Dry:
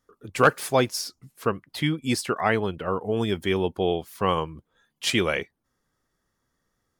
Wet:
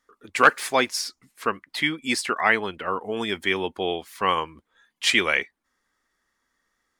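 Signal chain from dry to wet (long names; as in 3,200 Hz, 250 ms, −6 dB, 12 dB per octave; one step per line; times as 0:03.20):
octave-band graphic EQ 125/250/1,000/2,000/4,000/8,000 Hz −12/+4/+5/+11/+5/+6 dB
level −4.5 dB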